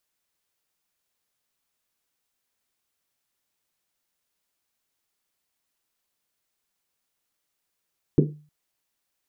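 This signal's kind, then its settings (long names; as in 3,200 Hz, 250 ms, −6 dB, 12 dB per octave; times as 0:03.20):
drum after Risset length 0.31 s, pitch 150 Hz, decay 0.42 s, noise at 320 Hz, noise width 240 Hz, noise 45%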